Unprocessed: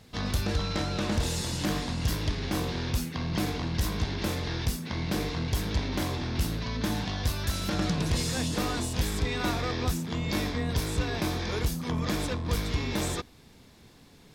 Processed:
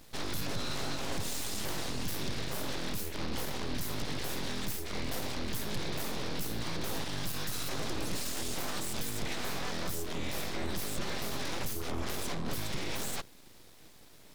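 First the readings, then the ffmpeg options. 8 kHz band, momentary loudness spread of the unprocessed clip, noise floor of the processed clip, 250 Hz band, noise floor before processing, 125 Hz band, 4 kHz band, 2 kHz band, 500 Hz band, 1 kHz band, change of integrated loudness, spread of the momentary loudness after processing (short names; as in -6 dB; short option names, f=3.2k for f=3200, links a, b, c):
-1.5 dB, 2 LU, -54 dBFS, -9.0 dB, -54 dBFS, -11.5 dB, -4.0 dB, -4.5 dB, -5.5 dB, -5.0 dB, -6.5 dB, 1 LU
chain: -af "highshelf=f=9.5k:g=11.5,alimiter=limit=-24dB:level=0:latency=1:release=49,aeval=exprs='abs(val(0))':c=same"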